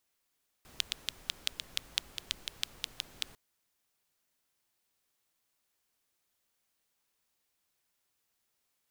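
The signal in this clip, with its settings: rain from filtered ticks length 2.70 s, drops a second 5.6, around 3.4 kHz, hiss -14 dB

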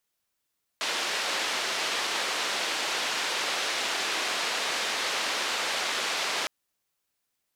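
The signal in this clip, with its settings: noise band 400–4200 Hz, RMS -29.5 dBFS 5.66 s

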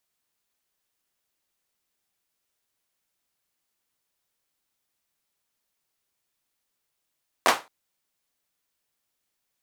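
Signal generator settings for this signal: hand clap length 0.22 s, bursts 3, apart 11 ms, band 890 Hz, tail 0.25 s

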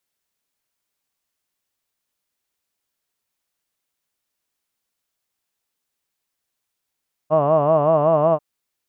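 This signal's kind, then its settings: formant vowel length 1.09 s, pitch 149 Hz, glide +1 st, vibrato depth 1.15 st, F1 640 Hz, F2 1.1 kHz, F3 2.8 kHz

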